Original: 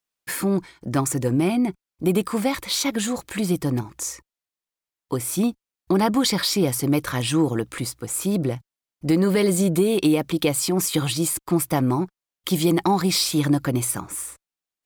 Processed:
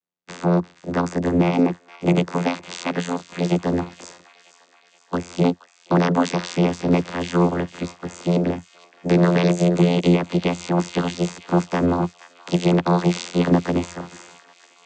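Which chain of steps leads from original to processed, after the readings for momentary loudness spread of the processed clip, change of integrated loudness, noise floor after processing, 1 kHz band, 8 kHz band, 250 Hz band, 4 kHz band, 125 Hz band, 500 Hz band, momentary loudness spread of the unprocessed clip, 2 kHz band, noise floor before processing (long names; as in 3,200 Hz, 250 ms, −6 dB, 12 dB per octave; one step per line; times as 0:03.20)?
11 LU, +1.5 dB, −57 dBFS, +3.0 dB, −12.0 dB, +1.5 dB, −6.0 dB, +3.5 dB, +2.0 dB, 10 LU, +2.0 dB, below −85 dBFS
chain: ceiling on every frequency bin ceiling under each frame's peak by 18 dB
channel vocoder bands 16, saw 87.3 Hz
delay with a high-pass on its return 474 ms, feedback 60%, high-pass 1,400 Hz, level −14.5 dB
level +3.5 dB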